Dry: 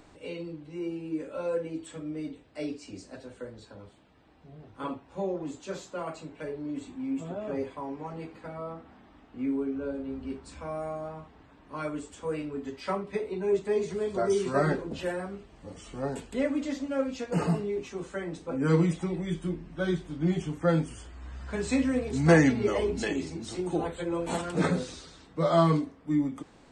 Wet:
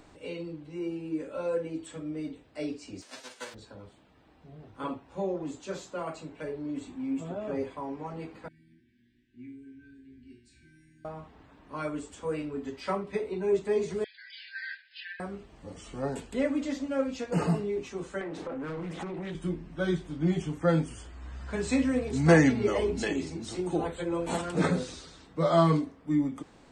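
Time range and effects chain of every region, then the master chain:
3.01–3.53 s: formants flattened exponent 0.3 + band-pass 310–7100 Hz + upward compressor, threshold -53 dBFS
8.48–11.05 s: brick-wall FIR band-stop 400–1500 Hz + feedback comb 120 Hz, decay 0.54 s, mix 90%
14.04–15.20 s: brick-wall FIR band-pass 1.5–5.2 kHz + upward compressor, threshold -54 dBFS
18.21–19.35 s: overdrive pedal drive 24 dB, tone 1.2 kHz, clips at -13 dBFS + compression 20:1, threshold -33 dBFS + loudspeaker Doppler distortion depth 0.2 ms
whole clip: none

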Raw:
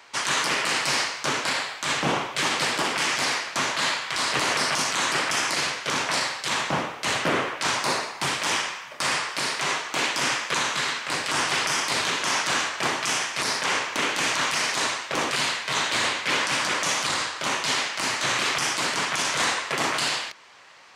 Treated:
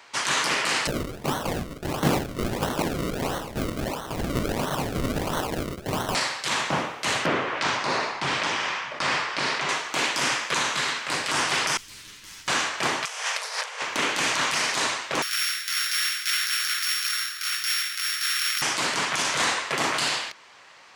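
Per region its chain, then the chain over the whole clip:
0.87–6.15 s: tilt EQ -2.5 dB/octave + LFO notch square 1.1 Hz 360–2000 Hz + decimation with a swept rate 36× 1.5 Hz
7.26–9.69 s: tremolo 2.7 Hz, depth 50% + distance through air 110 m + level flattener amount 50%
11.77–12.48 s: comb filter that takes the minimum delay 9.7 ms + amplifier tone stack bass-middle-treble 6-0-2
13.05–13.82 s: compressor with a negative ratio -30 dBFS, ratio -0.5 + brick-wall FIR high-pass 420 Hz
15.22–18.62 s: sorted samples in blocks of 8 samples + steep high-pass 1.3 kHz 72 dB/octave
whole clip: none

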